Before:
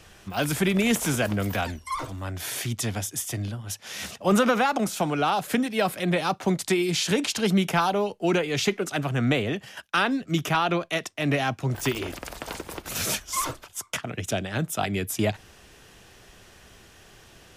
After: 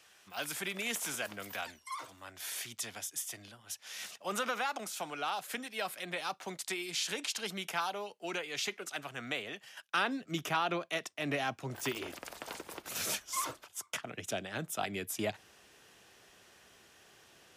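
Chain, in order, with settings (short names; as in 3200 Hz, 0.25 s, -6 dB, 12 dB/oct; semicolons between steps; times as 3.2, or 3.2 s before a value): HPF 1200 Hz 6 dB/oct, from 9.89 s 320 Hz; gain -7.5 dB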